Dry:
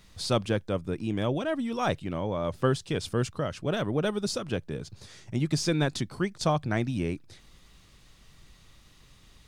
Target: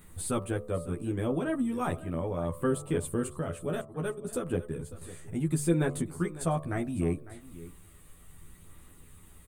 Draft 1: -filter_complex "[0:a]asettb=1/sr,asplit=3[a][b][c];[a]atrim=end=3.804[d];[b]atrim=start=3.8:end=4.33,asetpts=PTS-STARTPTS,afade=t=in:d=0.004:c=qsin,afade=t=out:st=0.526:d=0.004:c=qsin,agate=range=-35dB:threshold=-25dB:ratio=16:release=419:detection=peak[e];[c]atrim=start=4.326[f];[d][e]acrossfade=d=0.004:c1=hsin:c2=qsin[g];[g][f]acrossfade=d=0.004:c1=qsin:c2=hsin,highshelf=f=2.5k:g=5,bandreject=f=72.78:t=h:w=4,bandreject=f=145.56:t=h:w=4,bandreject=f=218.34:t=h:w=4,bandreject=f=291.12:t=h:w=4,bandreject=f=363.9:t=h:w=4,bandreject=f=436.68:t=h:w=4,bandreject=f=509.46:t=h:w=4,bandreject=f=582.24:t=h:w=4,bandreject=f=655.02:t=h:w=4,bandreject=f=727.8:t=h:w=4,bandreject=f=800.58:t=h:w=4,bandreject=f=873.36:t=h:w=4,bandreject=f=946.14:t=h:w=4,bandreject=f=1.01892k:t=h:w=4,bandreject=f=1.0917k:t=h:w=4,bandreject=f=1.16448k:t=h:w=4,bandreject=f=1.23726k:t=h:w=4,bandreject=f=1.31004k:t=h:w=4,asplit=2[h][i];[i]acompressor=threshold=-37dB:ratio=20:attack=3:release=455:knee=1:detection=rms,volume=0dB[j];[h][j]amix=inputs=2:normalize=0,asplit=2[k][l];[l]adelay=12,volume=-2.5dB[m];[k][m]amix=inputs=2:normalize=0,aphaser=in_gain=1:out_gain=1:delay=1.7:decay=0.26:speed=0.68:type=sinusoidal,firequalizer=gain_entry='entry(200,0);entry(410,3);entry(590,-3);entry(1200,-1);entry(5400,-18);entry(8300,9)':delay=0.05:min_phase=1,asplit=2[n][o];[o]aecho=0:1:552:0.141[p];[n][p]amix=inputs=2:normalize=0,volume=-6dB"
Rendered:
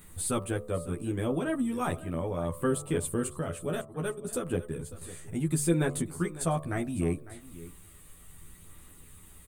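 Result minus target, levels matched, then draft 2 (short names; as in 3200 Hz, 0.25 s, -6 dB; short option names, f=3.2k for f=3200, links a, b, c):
4000 Hz band +3.0 dB
-filter_complex "[0:a]asettb=1/sr,asplit=3[a][b][c];[a]atrim=end=3.804[d];[b]atrim=start=3.8:end=4.33,asetpts=PTS-STARTPTS,afade=t=in:d=0.004:c=qsin,afade=t=out:st=0.526:d=0.004:c=qsin,agate=range=-35dB:threshold=-25dB:ratio=16:release=419:detection=peak[e];[c]atrim=start=4.326[f];[d][e]acrossfade=d=0.004:c1=hsin:c2=qsin[g];[g][f]acrossfade=d=0.004:c1=qsin:c2=hsin,bandreject=f=72.78:t=h:w=4,bandreject=f=145.56:t=h:w=4,bandreject=f=218.34:t=h:w=4,bandreject=f=291.12:t=h:w=4,bandreject=f=363.9:t=h:w=4,bandreject=f=436.68:t=h:w=4,bandreject=f=509.46:t=h:w=4,bandreject=f=582.24:t=h:w=4,bandreject=f=655.02:t=h:w=4,bandreject=f=727.8:t=h:w=4,bandreject=f=800.58:t=h:w=4,bandreject=f=873.36:t=h:w=4,bandreject=f=946.14:t=h:w=4,bandreject=f=1.01892k:t=h:w=4,bandreject=f=1.0917k:t=h:w=4,bandreject=f=1.16448k:t=h:w=4,bandreject=f=1.23726k:t=h:w=4,bandreject=f=1.31004k:t=h:w=4,asplit=2[h][i];[i]acompressor=threshold=-37dB:ratio=20:attack=3:release=455:knee=1:detection=rms,volume=0dB[j];[h][j]amix=inputs=2:normalize=0,asplit=2[k][l];[l]adelay=12,volume=-2.5dB[m];[k][m]amix=inputs=2:normalize=0,aphaser=in_gain=1:out_gain=1:delay=1.7:decay=0.26:speed=0.68:type=sinusoidal,firequalizer=gain_entry='entry(200,0);entry(410,3);entry(590,-3);entry(1200,-1);entry(5400,-18);entry(8300,9)':delay=0.05:min_phase=1,asplit=2[n][o];[o]aecho=0:1:552:0.141[p];[n][p]amix=inputs=2:normalize=0,volume=-6dB"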